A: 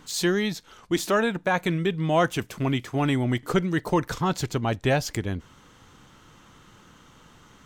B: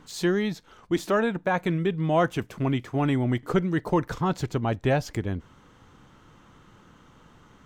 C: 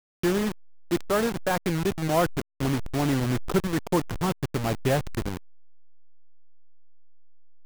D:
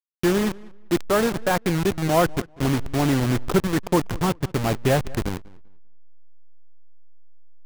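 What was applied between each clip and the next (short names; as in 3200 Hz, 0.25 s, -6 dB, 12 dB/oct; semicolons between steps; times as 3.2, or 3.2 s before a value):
high shelf 2500 Hz -9.5 dB
level-crossing sampler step -24 dBFS
darkening echo 0.195 s, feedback 23%, low-pass 3200 Hz, level -22 dB; gain +4 dB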